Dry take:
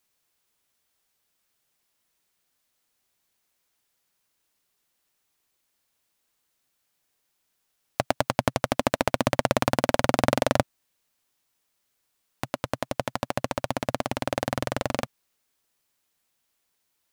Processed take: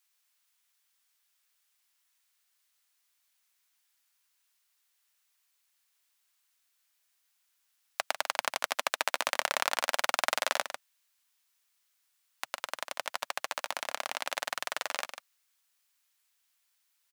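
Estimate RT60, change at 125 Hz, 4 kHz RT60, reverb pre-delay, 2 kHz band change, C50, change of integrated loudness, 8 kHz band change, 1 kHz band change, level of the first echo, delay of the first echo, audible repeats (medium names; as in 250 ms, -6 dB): no reverb, under -35 dB, no reverb, no reverb, -0.5 dB, no reverb, -5.5 dB, +0.5 dB, -5.5 dB, -9.5 dB, 147 ms, 1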